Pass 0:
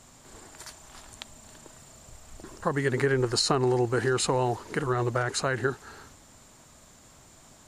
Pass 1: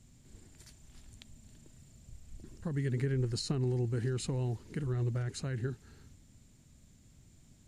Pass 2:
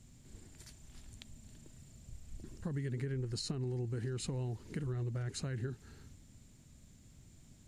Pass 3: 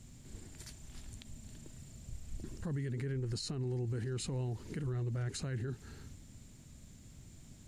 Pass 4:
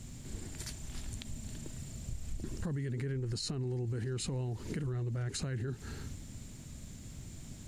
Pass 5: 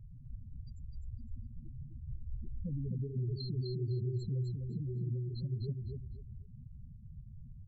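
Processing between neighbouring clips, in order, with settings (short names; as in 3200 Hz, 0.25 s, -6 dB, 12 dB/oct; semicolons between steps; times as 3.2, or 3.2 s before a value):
EQ curve 110 Hz 0 dB, 210 Hz -3 dB, 630 Hz -19 dB, 1100 Hz -24 dB, 2200 Hz -13 dB
compressor 6:1, threshold -36 dBFS, peak gain reduction 8.5 dB; gain +1 dB
limiter -35.5 dBFS, peak gain reduction 8 dB; gain +4.5 dB
compressor, threshold -41 dBFS, peak gain reduction 7 dB; gain +7.5 dB
tracing distortion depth 0.029 ms; loudest bins only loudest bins 4; feedback echo 0.254 s, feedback 24%, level -4 dB; gain -1 dB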